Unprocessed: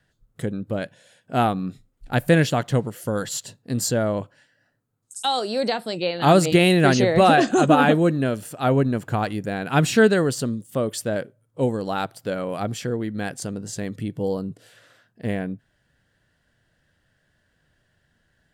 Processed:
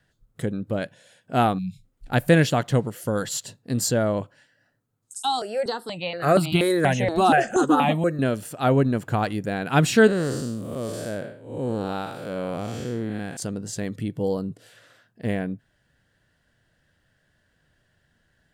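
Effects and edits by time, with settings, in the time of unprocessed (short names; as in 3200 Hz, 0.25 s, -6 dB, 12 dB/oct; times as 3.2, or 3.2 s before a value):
1.59–1.84 spectral delete 200–2100 Hz
5.18–8.19 step phaser 4.2 Hz 530–1800 Hz
10.07–13.37 time blur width 0.233 s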